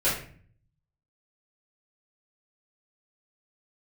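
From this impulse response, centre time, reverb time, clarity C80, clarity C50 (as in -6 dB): 39 ms, 0.45 s, 9.5 dB, 4.5 dB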